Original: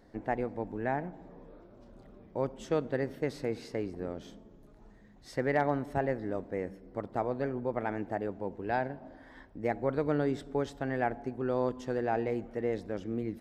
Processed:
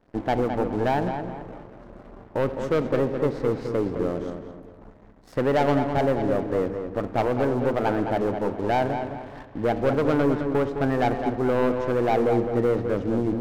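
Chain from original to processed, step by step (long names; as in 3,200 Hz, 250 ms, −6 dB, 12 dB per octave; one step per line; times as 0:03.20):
treble cut that deepens with the level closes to 2,000 Hz, closed at −25.5 dBFS
high shelf with overshoot 1,800 Hz −9.5 dB, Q 1.5
leveller curve on the samples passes 3
pitch vibrato 1.2 Hz 12 cents
feedback echo with a low-pass in the loop 211 ms, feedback 37%, low-pass 3,200 Hz, level −7 dB
on a send at −14 dB: convolution reverb RT60 1.7 s, pre-delay 3 ms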